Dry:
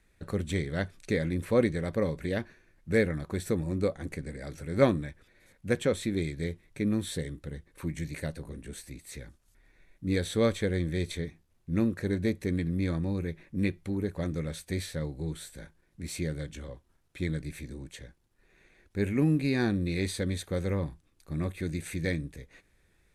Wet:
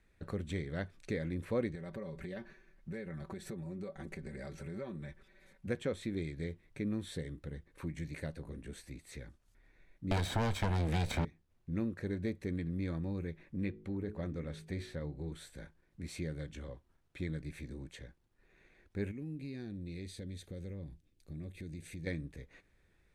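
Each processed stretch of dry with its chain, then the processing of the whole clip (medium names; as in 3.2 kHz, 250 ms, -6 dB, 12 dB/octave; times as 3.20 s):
1.75–5.67 s: comb 5.2 ms, depth 69% + compression 5:1, threshold -36 dBFS
10.11–11.25 s: comb filter that takes the minimum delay 1.3 ms + waveshaping leveller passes 3 + three bands compressed up and down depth 100%
13.56–15.32 s: treble shelf 4.6 kHz -7 dB + de-hum 52.75 Hz, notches 9
19.11–22.07 s: peaking EQ 1.1 kHz -14.5 dB 1.4 oct + compression 2.5:1, threshold -40 dBFS
whole clip: compression 1.5:1, threshold -38 dBFS; low-pass 3.9 kHz 6 dB/octave; trim -3 dB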